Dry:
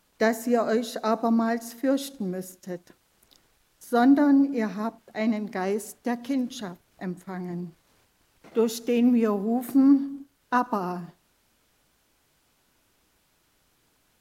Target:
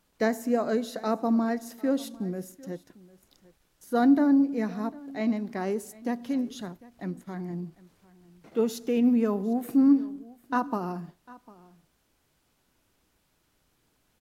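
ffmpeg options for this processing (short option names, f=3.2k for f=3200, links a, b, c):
-filter_complex "[0:a]lowshelf=f=470:g=4.5,asplit=2[a][b];[b]aecho=0:1:750:0.0841[c];[a][c]amix=inputs=2:normalize=0,volume=-5dB"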